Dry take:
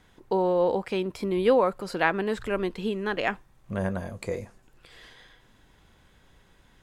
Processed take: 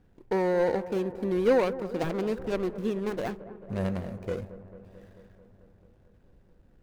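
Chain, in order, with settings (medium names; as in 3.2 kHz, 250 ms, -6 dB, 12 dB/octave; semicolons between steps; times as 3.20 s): median filter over 41 samples; feedback echo behind a low-pass 220 ms, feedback 71%, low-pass 1.4 kHz, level -15 dB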